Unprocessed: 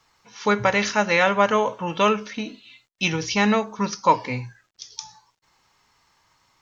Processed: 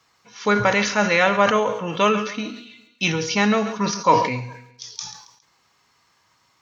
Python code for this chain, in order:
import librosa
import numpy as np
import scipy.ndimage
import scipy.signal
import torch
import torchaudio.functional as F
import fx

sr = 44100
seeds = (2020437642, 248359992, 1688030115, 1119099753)

p1 = scipy.signal.sosfilt(scipy.signal.butter(2, 81.0, 'highpass', fs=sr, output='sos'), x)
p2 = fx.notch(p1, sr, hz=880.0, q=13.0)
p3 = fx.comb_fb(p2, sr, f0_hz=240.0, decay_s=1.0, harmonics='all', damping=0.0, mix_pct=60)
p4 = p3 + fx.echo_feedback(p3, sr, ms=137, feedback_pct=42, wet_db=-17.5, dry=0)
p5 = fx.sustainer(p4, sr, db_per_s=73.0)
y = p5 * librosa.db_to_amplitude(8.5)